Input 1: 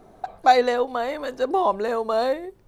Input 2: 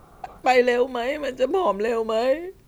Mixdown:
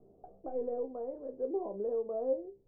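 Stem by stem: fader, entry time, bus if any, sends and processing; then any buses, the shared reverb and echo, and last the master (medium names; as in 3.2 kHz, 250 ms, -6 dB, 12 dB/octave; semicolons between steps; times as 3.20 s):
0.0 dB, 0.00 s, no send, peak limiter -14 dBFS, peak gain reduction 9.5 dB
-3.5 dB, 0.00 s, no send, half-wave rectifier; auto duck -23 dB, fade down 1.35 s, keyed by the first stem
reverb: none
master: four-pole ladder low-pass 570 Hz, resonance 40%; feedback comb 66 Hz, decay 0.18 s, harmonics all, mix 90%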